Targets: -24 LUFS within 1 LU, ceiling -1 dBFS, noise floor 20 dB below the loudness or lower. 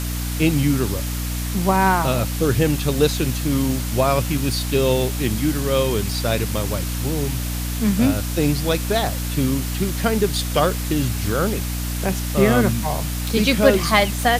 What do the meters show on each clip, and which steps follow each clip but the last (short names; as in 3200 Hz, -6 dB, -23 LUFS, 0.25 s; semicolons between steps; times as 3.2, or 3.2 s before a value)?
hum 60 Hz; harmonics up to 300 Hz; hum level -23 dBFS; noise floor -25 dBFS; noise floor target -41 dBFS; loudness -20.5 LUFS; peak -1.0 dBFS; loudness target -24.0 LUFS
-> de-hum 60 Hz, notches 5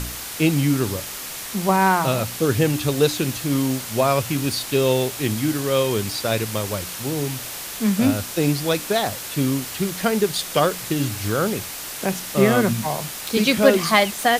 hum none; noise floor -33 dBFS; noise floor target -42 dBFS
-> noise print and reduce 9 dB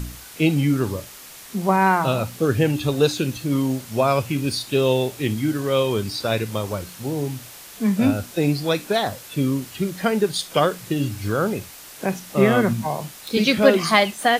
noise floor -42 dBFS; loudness -21.5 LUFS; peak -1.0 dBFS; loudness target -24.0 LUFS
-> gain -2.5 dB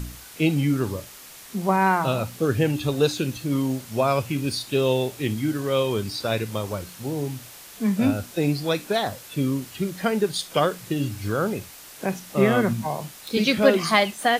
loudness -24.0 LUFS; peak -3.5 dBFS; noise floor -44 dBFS